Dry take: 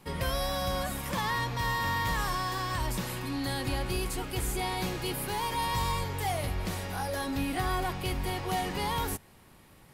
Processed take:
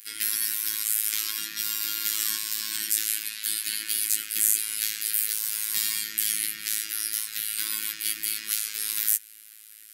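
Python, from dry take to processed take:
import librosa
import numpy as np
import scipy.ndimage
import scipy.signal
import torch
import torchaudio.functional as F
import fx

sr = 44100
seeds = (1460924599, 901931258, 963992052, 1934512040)

y = scipy.signal.sosfilt(scipy.signal.cheby1(3, 1.0, [280.0, 1600.0], 'bandstop', fs=sr, output='sos'), x)
y = fx.robotise(y, sr, hz=108.0)
y = fx.spec_gate(y, sr, threshold_db=-15, keep='weak')
y = fx.riaa(y, sr, side='recording')
y = y * librosa.db_to_amplitude(5.5)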